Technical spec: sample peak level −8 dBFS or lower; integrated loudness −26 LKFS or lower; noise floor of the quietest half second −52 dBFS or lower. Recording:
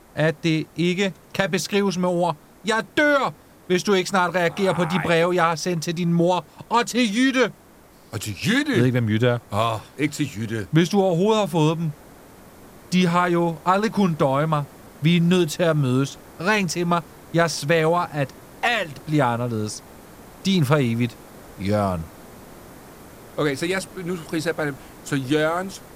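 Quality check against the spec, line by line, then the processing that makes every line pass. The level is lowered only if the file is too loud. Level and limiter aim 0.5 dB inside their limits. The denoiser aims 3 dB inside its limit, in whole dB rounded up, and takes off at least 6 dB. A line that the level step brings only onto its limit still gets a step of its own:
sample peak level −5.0 dBFS: out of spec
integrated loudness −22.0 LKFS: out of spec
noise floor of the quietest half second −50 dBFS: out of spec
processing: level −4.5 dB

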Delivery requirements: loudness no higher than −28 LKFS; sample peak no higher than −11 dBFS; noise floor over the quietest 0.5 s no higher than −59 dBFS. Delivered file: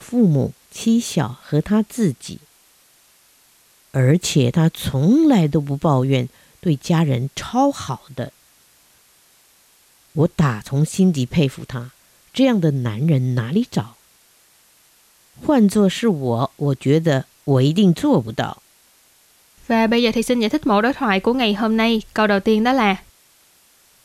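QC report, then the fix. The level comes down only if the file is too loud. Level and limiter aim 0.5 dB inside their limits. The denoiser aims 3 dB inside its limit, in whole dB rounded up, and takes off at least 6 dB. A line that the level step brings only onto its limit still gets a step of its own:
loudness −18.5 LKFS: out of spec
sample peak −5.5 dBFS: out of spec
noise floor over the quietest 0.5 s −55 dBFS: out of spec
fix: level −10 dB

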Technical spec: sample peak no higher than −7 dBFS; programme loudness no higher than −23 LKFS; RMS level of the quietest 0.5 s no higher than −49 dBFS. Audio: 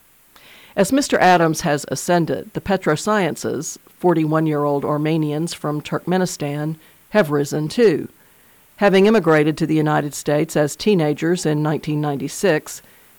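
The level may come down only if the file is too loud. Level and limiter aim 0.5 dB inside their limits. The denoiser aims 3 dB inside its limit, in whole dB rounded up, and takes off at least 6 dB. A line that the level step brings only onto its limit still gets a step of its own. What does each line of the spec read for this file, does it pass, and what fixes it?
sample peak −5.0 dBFS: out of spec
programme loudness −18.5 LKFS: out of spec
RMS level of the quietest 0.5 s −51 dBFS: in spec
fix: level −5 dB

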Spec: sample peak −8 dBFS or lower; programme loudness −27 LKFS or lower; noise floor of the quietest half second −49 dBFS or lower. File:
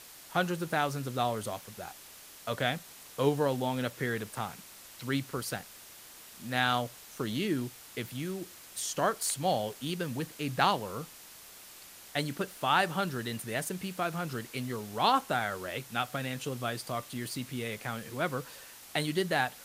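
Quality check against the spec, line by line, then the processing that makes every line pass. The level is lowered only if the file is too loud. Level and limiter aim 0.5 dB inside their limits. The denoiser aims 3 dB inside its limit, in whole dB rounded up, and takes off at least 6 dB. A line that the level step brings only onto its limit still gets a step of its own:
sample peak −10.5 dBFS: in spec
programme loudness −33.0 LKFS: in spec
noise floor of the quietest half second −51 dBFS: in spec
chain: no processing needed

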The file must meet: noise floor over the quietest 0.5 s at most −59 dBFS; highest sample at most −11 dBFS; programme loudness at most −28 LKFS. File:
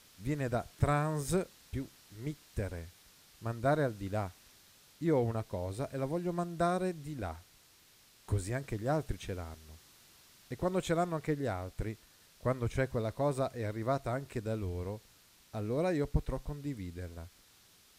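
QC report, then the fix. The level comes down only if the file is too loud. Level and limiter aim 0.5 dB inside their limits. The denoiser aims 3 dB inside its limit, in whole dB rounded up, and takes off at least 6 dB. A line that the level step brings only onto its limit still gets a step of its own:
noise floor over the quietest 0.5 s −63 dBFS: in spec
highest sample −17.0 dBFS: in spec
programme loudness −35.5 LKFS: in spec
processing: no processing needed

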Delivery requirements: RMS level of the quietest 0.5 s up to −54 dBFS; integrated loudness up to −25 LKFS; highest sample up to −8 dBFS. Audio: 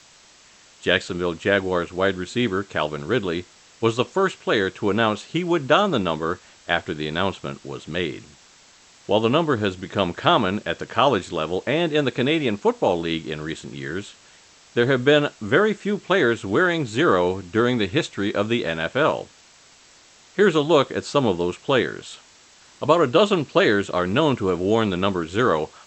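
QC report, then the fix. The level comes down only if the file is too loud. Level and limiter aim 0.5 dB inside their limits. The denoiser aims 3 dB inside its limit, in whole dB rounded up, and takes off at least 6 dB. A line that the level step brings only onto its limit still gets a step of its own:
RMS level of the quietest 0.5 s −52 dBFS: out of spec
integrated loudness −22.0 LKFS: out of spec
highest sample −1.5 dBFS: out of spec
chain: level −3.5 dB
brickwall limiter −8.5 dBFS

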